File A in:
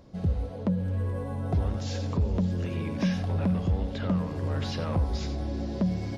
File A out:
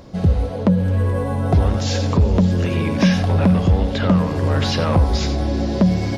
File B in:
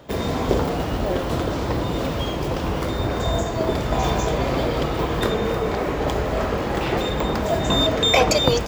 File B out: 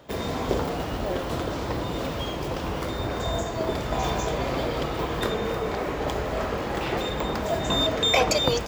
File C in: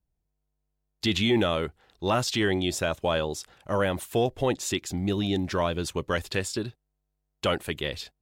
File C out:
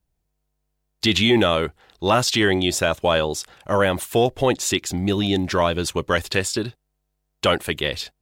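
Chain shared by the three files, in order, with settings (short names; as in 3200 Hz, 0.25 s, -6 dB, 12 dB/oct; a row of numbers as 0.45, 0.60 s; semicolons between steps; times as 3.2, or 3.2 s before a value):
low shelf 430 Hz -3.5 dB; normalise peaks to -6 dBFS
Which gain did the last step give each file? +14.0, -3.5, +8.0 dB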